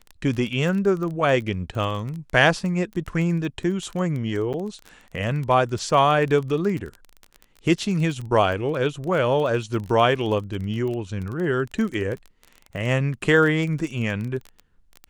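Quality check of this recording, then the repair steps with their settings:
surface crackle 20 per second −28 dBFS
0:04.53–0:04.54: drop-out 8.3 ms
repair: click removal
repair the gap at 0:04.53, 8.3 ms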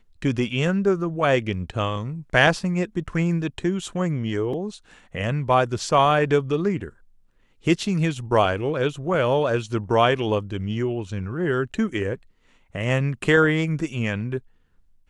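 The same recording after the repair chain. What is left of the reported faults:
none of them is left

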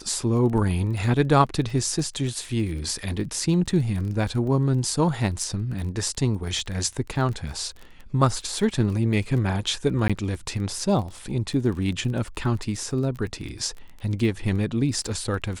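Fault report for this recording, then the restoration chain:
surface crackle 23 per second −32 dBFS
0:10.08–0:10.10: drop-out 16 ms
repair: click removal
repair the gap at 0:10.08, 16 ms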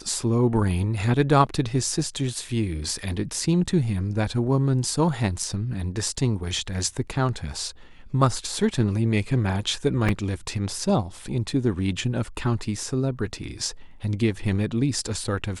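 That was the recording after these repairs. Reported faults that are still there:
none of them is left

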